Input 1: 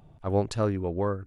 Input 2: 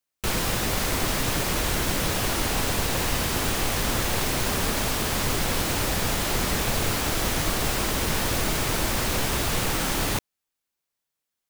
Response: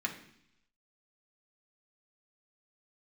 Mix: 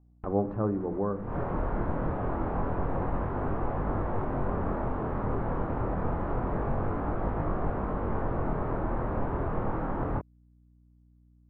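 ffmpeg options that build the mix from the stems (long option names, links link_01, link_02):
-filter_complex "[0:a]agate=range=-19dB:threshold=-46dB:ratio=16:detection=peak,volume=-4dB,asplit=3[link_01][link_02][link_03];[link_02]volume=-5.5dB[link_04];[1:a]flanger=delay=20:depth=5.8:speed=0.27,aeval=exprs='val(0)+0.00112*(sin(2*PI*60*n/s)+sin(2*PI*2*60*n/s)/2+sin(2*PI*3*60*n/s)/3+sin(2*PI*4*60*n/s)/4+sin(2*PI*5*60*n/s)/5)':channel_layout=same,volume=0.5dB[link_05];[link_03]apad=whole_len=506916[link_06];[link_05][link_06]sidechaincompress=threshold=-46dB:ratio=12:attack=6.3:release=192[link_07];[2:a]atrim=start_sample=2205[link_08];[link_04][link_08]afir=irnorm=-1:irlink=0[link_09];[link_01][link_07][link_09]amix=inputs=3:normalize=0,lowpass=frequency=1200:width=0.5412,lowpass=frequency=1200:width=1.3066"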